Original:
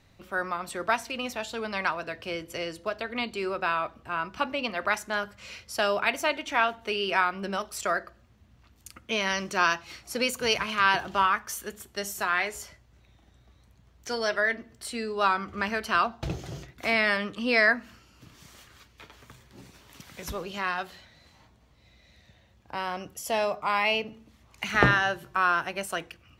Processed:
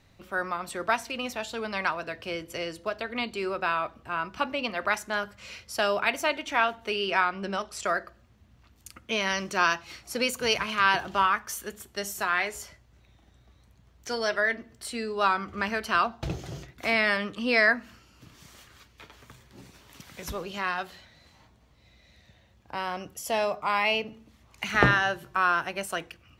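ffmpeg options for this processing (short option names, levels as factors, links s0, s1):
-filter_complex "[0:a]asettb=1/sr,asplit=3[s0][s1][s2];[s0]atrim=end=7.064[s3];[s1]atrim=start=7.06:end=7.85,asetpts=PTS-STARTPTS,afade=t=in:d=0.004:c=qsin,afade=t=out:st=0.786:d=0.004:c=qsin,lowpass=8400[s4];[s2]atrim=start=7.846[s5];[s3][s4]acrossfade=d=0.004:c1=hsin:c2=qsin[s6];[s6][s5]acrossfade=d=0.004:c1=qsin:c2=hsin"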